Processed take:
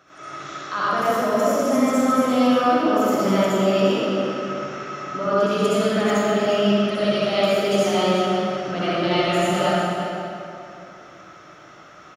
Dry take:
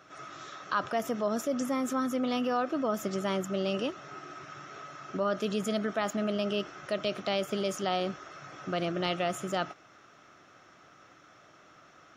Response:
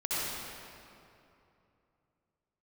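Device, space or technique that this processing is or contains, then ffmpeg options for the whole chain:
cave: -filter_complex "[0:a]aecho=1:1:351:0.282[s0];[1:a]atrim=start_sample=2205[s1];[s0][s1]afir=irnorm=-1:irlink=0,volume=1.41"

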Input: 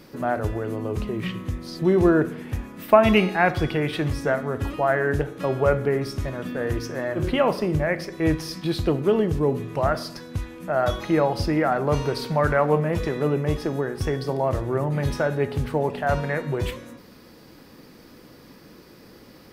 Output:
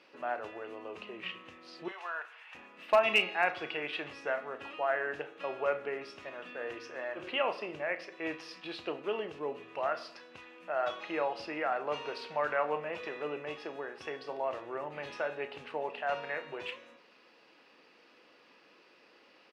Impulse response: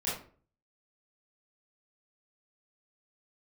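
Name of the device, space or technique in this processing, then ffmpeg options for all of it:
megaphone: -filter_complex "[0:a]asettb=1/sr,asplit=3[s0][s1][s2];[s0]atrim=end=1.884[s3];[s1]atrim=start=1.88:end=2.55,asetpts=PTS-STARTPTS,afade=t=in:d=0.004:c=qsin,afade=t=out:st=0.666:d=0.004:c=qsin,highpass=f=810:w=0.5412,highpass=f=810:w=1.3066[s4];[s2]atrim=start=2.546[s5];[s3][s4]acrossfade=d=0.004:c1=hsin:c2=qsin[s6];[s6][s5]acrossfade=d=0.004:c1=qsin:c2=hsin,highpass=550,lowpass=3900,equalizer=f=2700:t=o:w=0.29:g=11,asoftclip=type=hard:threshold=0.398,asplit=2[s7][s8];[s8]adelay=34,volume=0.224[s9];[s7][s9]amix=inputs=2:normalize=0,volume=0.376"

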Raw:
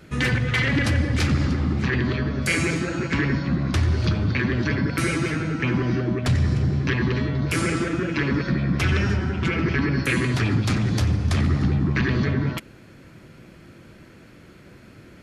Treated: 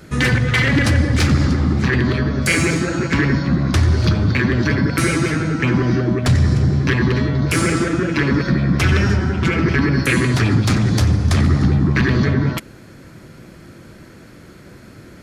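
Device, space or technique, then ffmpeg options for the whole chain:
exciter from parts: -filter_complex "[0:a]asplit=2[s0][s1];[s1]highpass=f=2500:w=0.5412,highpass=f=2500:w=1.3066,asoftclip=type=tanh:threshold=0.02,volume=0.531[s2];[s0][s2]amix=inputs=2:normalize=0,volume=2"

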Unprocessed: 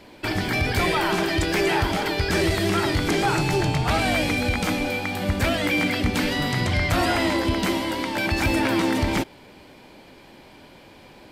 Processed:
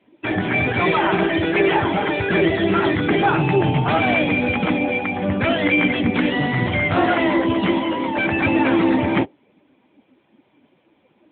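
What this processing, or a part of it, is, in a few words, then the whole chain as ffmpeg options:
mobile call with aggressive noise cancelling: -af "highpass=110,afftdn=nr=18:nf=-33,volume=2" -ar 8000 -c:a libopencore_amrnb -b:a 10200

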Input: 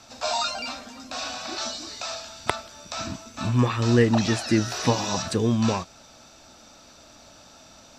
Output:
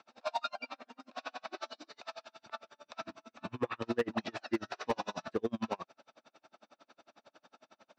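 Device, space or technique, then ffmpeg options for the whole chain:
helicopter radio: -af "highpass=300,lowpass=2600,aeval=exprs='val(0)*pow(10,-38*(0.5-0.5*cos(2*PI*11*n/s))/20)':c=same,asoftclip=type=hard:threshold=0.0841,volume=0.794"

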